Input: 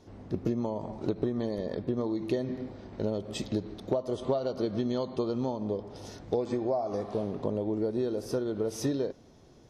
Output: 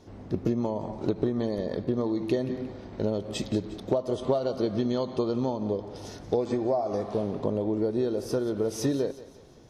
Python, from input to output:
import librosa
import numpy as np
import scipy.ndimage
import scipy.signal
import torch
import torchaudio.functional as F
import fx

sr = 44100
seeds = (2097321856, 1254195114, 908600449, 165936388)

y = fx.echo_thinned(x, sr, ms=178, feedback_pct=48, hz=420.0, wet_db=-15)
y = y * librosa.db_to_amplitude(3.0)